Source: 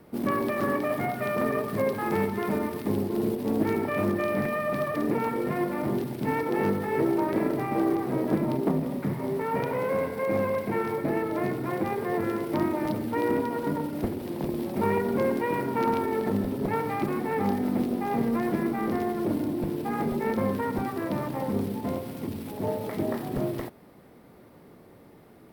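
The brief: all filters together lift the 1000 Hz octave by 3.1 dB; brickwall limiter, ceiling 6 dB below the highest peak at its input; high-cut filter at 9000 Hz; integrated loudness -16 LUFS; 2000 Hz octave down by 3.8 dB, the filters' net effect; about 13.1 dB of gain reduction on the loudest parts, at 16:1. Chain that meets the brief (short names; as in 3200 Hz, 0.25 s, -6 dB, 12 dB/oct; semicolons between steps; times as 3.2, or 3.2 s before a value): LPF 9000 Hz; bell 1000 Hz +5 dB; bell 2000 Hz -6 dB; compressor 16:1, threshold -33 dBFS; gain +23 dB; limiter -7 dBFS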